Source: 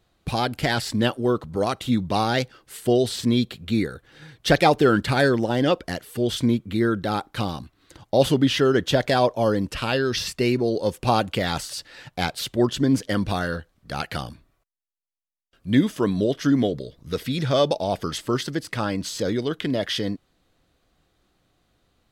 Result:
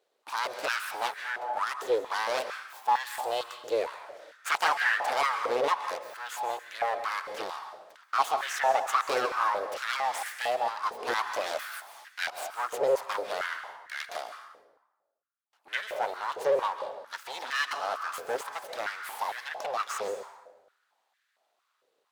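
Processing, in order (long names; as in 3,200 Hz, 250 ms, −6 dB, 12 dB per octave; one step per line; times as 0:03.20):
full-wave rectification
dense smooth reverb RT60 1.1 s, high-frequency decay 0.65×, pre-delay 120 ms, DRR 7.5 dB
high-pass on a step sequencer 4.4 Hz 480–1,700 Hz
level −7.5 dB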